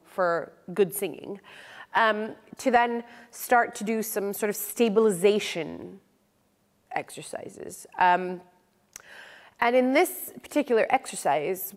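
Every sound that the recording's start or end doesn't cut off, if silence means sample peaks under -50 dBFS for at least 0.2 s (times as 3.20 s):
6.91–8.49 s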